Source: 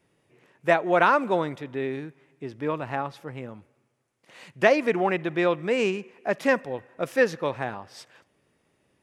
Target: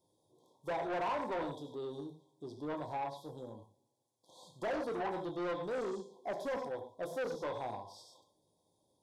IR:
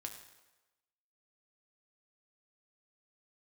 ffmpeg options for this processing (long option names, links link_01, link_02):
-filter_complex "[1:a]atrim=start_sample=2205,afade=type=out:start_time=0.19:duration=0.01,atrim=end_sample=8820[link_01];[0:a][link_01]afir=irnorm=-1:irlink=0,afftfilt=real='re*(1-between(b*sr/4096,1100,3200))':imag='im*(1-between(b*sr/4096,1100,3200))':win_size=4096:overlap=0.75,asoftclip=type=tanh:threshold=-30.5dB,acrossover=split=2500[link_02][link_03];[link_03]acompressor=threshold=-54dB:ratio=4:attack=1:release=60[link_04];[link_02][link_04]amix=inputs=2:normalize=0,lowshelf=frequency=390:gain=-8"